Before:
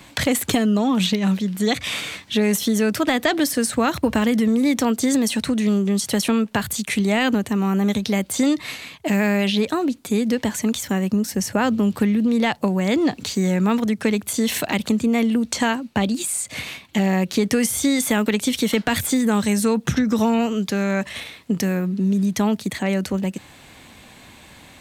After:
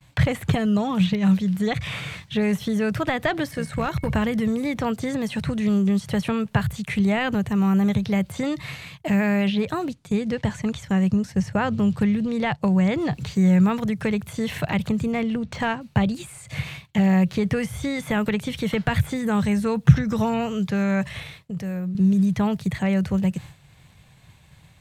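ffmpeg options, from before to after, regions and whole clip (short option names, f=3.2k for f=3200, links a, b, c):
-filter_complex "[0:a]asettb=1/sr,asplit=3[a][b][c];[a]atrim=end=3.514[d];[b]atrim=start=3.51:end=4.1,asetpts=PTS-STARTPTS,afade=t=in:d=0.004:c=qsin,afade=t=out:st=0.586:d=0.004:c=qsin,tremolo=f=66:d=0.462,aeval=exprs='val(0)+0.00562*sin(2*PI*2200*n/s)':c=same,asoftclip=type=hard:threshold=-12.5dB[e];[c]atrim=start=4.096[f];[d][e]acrossfade=d=0.004:c1=hsin:c2=qsin[g];[g][f]acrossfade=d=0.004:c1=qsin:c2=hsin,asettb=1/sr,asplit=3[h][i][j];[h]atrim=end=9.934[k];[i]atrim=start=9.93:end=12.93,asetpts=PTS-STARTPTS,afade=t=in:d=0.004:c=qsin,afade=t=out:st=2.996:d=0.004:c=qsin,lowpass=8.5k,agate=range=-7dB:threshold=-33dB:ratio=16:release=100:detection=peak[l];[j]atrim=start=12.926[m];[k][l]acrossfade=d=0.004:c1=hsin:c2=qsin[n];[n][m]acrossfade=d=0.004:c1=qsin:c2=hsin,asettb=1/sr,asplit=3[o][p][q];[o]atrim=end=15.124[r];[p]atrim=start=15.12:end=15.81,asetpts=PTS-STARTPTS,afade=t=in:d=0.004:c=qsin,afade=t=out:st=0.686:d=0.004:c=qsin,bandreject=f=60:t=h:w=6,bandreject=f=120:t=h:w=6,bandreject=f=180:t=h:w=6,adynamicsmooth=sensitivity=3.5:basefreq=3.7k[s];[q]atrim=start=15.806[t];[r][s]acrossfade=d=0.004:c1=hsin:c2=qsin[u];[u][t]acrossfade=d=0.004:c1=qsin:c2=hsin,asettb=1/sr,asplit=3[v][w][x];[v]atrim=end=21.394[y];[w]atrim=start=21.39:end=21.95,asetpts=PTS-STARTPTS,afade=t=in:d=0.004:c=qsin,afade=t=out:st=0.556:d=0.004:c=qsin,equalizer=f=570:t=o:w=0.73:g=5.5,acompressor=threshold=-44dB:ratio=1.5:attack=3.2:release=140:knee=1:detection=peak[z];[x]atrim=start=21.946[aa];[y][z]acrossfade=d=0.004:c1=hsin:c2=qsin[ab];[ab][aa]acrossfade=d=0.004:c1=qsin:c2=hsin,agate=range=-33dB:threshold=-37dB:ratio=3:detection=peak,acrossover=split=2900[ac][ad];[ad]acompressor=threshold=-41dB:ratio=4:attack=1:release=60[ae];[ac][ae]amix=inputs=2:normalize=0,lowshelf=f=190:t=q:w=3:g=9,volume=-2dB"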